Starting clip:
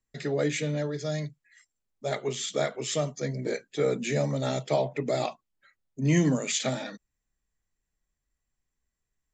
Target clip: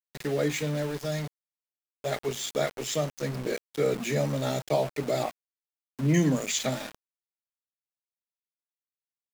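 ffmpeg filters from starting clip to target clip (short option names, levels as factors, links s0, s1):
-filter_complex "[0:a]asettb=1/sr,asplit=3[s0][s1][s2];[s0]atrim=end=5.234[s3];[s1]atrim=start=5.23:end=6.14,asetpts=PTS-STARTPTS,afade=t=in:d=0.004:c=qsin,afade=t=out:st=0.906:d=0.004:c=qsin,lowpass=1600[s4];[s2]atrim=start=6.136[s5];[s3][s4]acrossfade=d=0.004:c1=hsin:c2=qsin[s6];[s6][s5]acrossfade=d=0.004:c1=qsin:c2=hsin,aeval=exprs='val(0)*gte(abs(val(0)),0.0178)':c=same"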